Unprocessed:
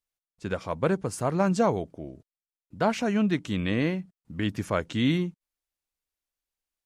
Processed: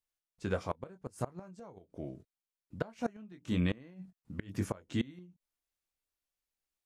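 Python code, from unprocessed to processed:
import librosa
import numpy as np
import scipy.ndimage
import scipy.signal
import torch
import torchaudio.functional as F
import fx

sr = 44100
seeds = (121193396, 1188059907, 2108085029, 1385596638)

y = fx.dynamic_eq(x, sr, hz=2900.0, q=0.75, threshold_db=-45.0, ratio=4.0, max_db=-4)
y = fx.chorus_voices(y, sr, voices=2, hz=0.43, base_ms=22, depth_ms=1.3, mix_pct=30)
y = fx.gate_flip(y, sr, shuts_db=-20.0, range_db=-25)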